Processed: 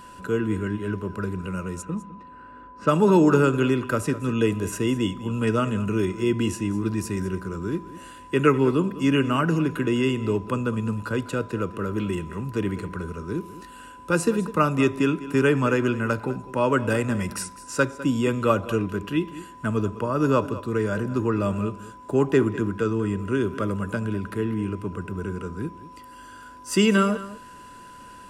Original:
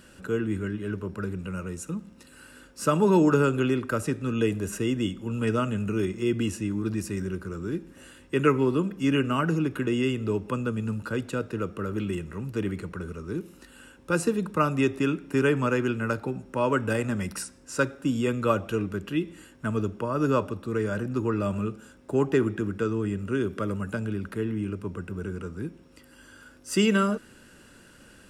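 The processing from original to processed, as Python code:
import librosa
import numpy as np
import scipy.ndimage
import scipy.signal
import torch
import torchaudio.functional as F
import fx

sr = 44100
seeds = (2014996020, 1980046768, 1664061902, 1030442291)

y = fx.env_lowpass(x, sr, base_hz=1200.0, full_db=-20.5, at=(1.81, 3.21), fade=0.02)
y = y + 10.0 ** (-16.0 / 20.0) * np.pad(y, (int(203 * sr / 1000.0), 0))[:len(y)]
y = y + 10.0 ** (-46.0 / 20.0) * np.sin(2.0 * np.pi * 1000.0 * np.arange(len(y)) / sr)
y = y * 10.0 ** (3.0 / 20.0)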